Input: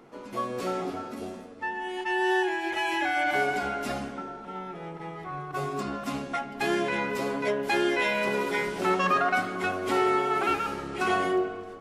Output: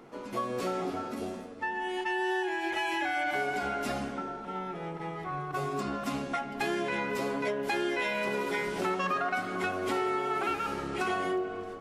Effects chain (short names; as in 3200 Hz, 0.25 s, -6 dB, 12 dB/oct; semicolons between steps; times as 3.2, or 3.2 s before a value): compressor 3:1, threshold -30 dBFS, peak gain reduction 8 dB; gain +1 dB